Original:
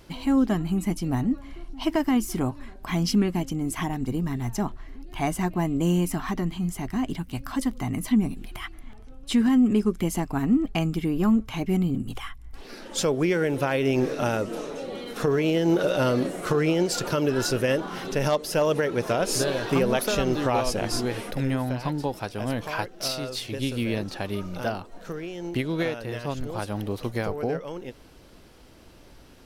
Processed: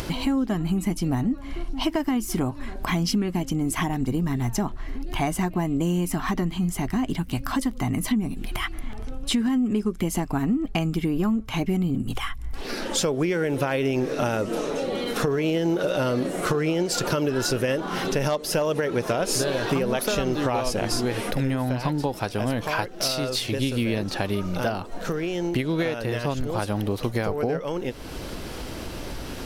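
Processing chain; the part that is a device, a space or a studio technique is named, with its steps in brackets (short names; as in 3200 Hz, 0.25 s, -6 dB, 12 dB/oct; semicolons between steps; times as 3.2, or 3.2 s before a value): upward and downward compression (upward compressor, threshold -27 dBFS; compressor, threshold -26 dBFS, peak gain reduction 10 dB); gain +5.5 dB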